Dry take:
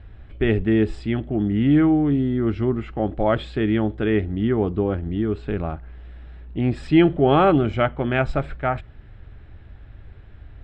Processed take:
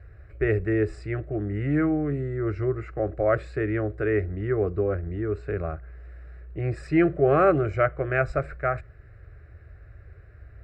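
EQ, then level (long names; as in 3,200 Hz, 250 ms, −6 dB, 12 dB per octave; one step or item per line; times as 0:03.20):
high-pass filter 54 Hz
phaser with its sweep stopped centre 890 Hz, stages 6
0.0 dB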